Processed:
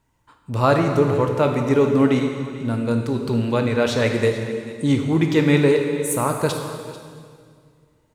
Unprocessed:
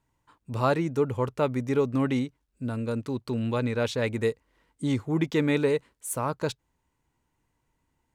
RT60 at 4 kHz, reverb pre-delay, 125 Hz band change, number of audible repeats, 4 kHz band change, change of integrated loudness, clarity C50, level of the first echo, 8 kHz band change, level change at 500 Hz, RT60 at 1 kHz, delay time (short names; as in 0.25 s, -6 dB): 1.9 s, 12 ms, +8.5 dB, 1, +8.5 dB, +8.0 dB, 4.5 dB, -16.0 dB, +8.5 dB, +8.0 dB, 1.9 s, 0.441 s